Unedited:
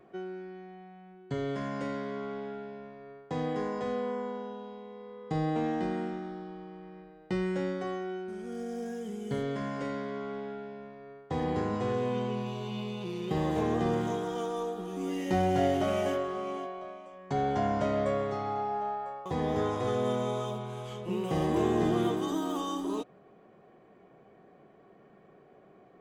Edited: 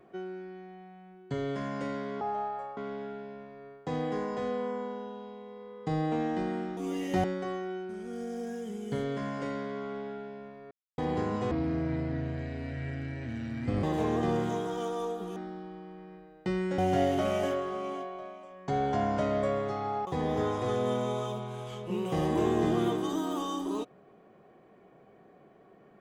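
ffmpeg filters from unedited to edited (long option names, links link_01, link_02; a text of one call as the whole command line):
ffmpeg -i in.wav -filter_complex "[0:a]asplit=12[link_01][link_02][link_03][link_04][link_05][link_06][link_07][link_08][link_09][link_10][link_11][link_12];[link_01]atrim=end=2.212[link_13];[link_02]atrim=start=18.678:end=19.242[link_14];[link_03]atrim=start=2.208:end=6.212[link_15];[link_04]atrim=start=14.938:end=15.412[link_16];[link_05]atrim=start=7.628:end=11.1,asetpts=PTS-STARTPTS,afade=type=out:start_time=3.468:duration=0.004:curve=hsin[link_17];[link_06]atrim=start=11.1:end=11.37,asetpts=PTS-STARTPTS,volume=0[link_18];[link_07]atrim=start=11.37:end=11.904,asetpts=PTS-STARTPTS,afade=type=in:duration=0.004:curve=hsin[link_19];[link_08]atrim=start=11.9:end=13.41,asetpts=PTS-STARTPTS,asetrate=28665,aresample=44100[link_20];[link_09]atrim=start=13.406:end=14.942[link_21];[link_10]atrim=start=6.208:end=7.632[link_22];[link_11]atrim=start=15.408:end=18.682[link_23];[link_12]atrim=start=19.238[link_24];[link_13][link_14]acrossfade=duration=0.004:curve1=hsin:curve2=hsin[link_25];[link_25][link_15]acrossfade=duration=0.004:curve1=hsin:curve2=hsin[link_26];[link_26][link_16]acrossfade=duration=0.004:curve1=hsin:curve2=hsin[link_27];[link_17][link_18][link_19]concat=n=3:v=0:a=1[link_28];[link_27][link_28]acrossfade=duration=0.004:curve1=hsin:curve2=hsin[link_29];[link_29][link_20]acrossfade=duration=0.004:curve1=hsin:curve2=hsin[link_30];[link_30][link_21]acrossfade=duration=0.004:curve1=hsin:curve2=hsin[link_31];[link_31][link_22]acrossfade=duration=0.004:curve1=hsin:curve2=hsin[link_32];[link_32][link_23]acrossfade=duration=0.004:curve1=hsin:curve2=hsin[link_33];[link_33][link_24]acrossfade=duration=0.004:curve1=hsin:curve2=hsin" out.wav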